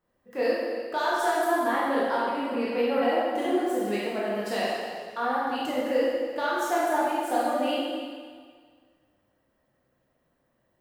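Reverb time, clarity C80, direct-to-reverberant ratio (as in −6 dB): 1.8 s, −0.5 dB, −7.5 dB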